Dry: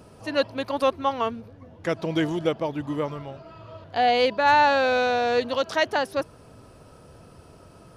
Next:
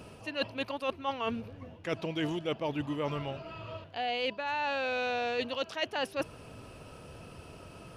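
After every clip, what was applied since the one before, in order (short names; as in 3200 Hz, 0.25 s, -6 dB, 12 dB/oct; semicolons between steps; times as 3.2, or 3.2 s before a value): bell 2700 Hz +10 dB 0.51 oct; reverse; compressor 16:1, threshold -29 dBFS, peak gain reduction 17 dB; reverse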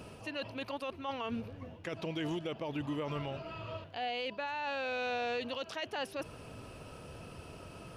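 limiter -28.5 dBFS, peak gain reduction 10 dB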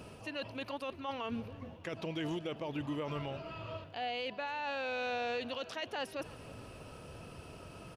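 feedback echo 0.307 s, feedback 48%, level -20 dB; gain -1 dB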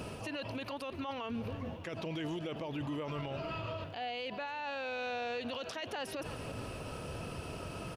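limiter -38.5 dBFS, peak gain reduction 9.5 dB; gain +7.5 dB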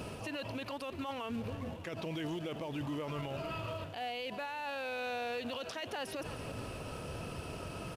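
in parallel at -11 dB: companded quantiser 4-bit; on the sum: downsampling 32000 Hz; gain -2.5 dB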